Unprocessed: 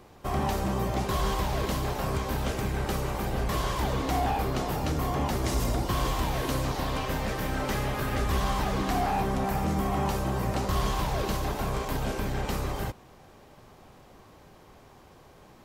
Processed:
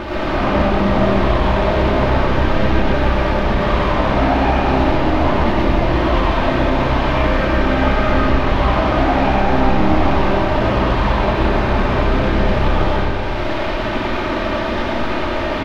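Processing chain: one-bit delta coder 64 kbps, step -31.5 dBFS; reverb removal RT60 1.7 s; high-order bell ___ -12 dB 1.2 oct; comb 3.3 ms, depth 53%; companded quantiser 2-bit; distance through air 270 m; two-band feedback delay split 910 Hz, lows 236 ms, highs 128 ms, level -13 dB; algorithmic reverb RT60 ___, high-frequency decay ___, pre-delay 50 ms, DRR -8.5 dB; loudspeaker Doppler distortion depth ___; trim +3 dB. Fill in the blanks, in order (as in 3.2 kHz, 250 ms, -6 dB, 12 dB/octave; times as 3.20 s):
6.5 kHz, 2.5 s, 0.7×, 0.11 ms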